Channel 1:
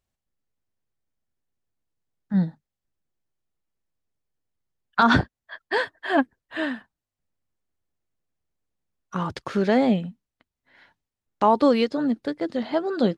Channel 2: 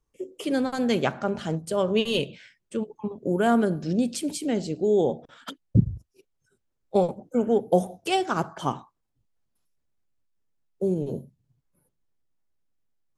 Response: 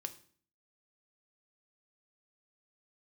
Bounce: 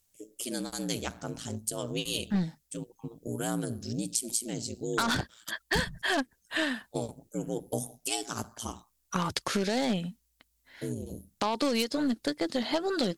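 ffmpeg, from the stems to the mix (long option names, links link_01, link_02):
-filter_complex "[0:a]alimiter=limit=-14.5dB:level=0:latency=1:release=46,aeval=exprs='0.188*(cos(1*acos(clip(val(0)/0.188,-1,1)))-cos(1*PI/2))+0.0211*(cos(4*acos(clip(val(0)/0.188,-1,1)))-cos(4*PI/2))+0.00841*(cos(6*acos(clip(val(0)/0.188,-1,1)))-cos(6*PI/2))':channel_layout=same,aemphasis=mode=production:type=cd,volume=-0.5dB[link_01];[1:a]bass=frequency=250:gain=7,treble=frequency=4000:gain=13,aeval=exprs='val(0)*sin(2*PI*57*n/s)':channel_layout=same,volume=-10.5dB[link_02];[link_01][link_02]amix=inputs=2:normalize=0,highshelf=frequency=3200:gain=11.5,acompressor=threshold=-26dB:ratio=3"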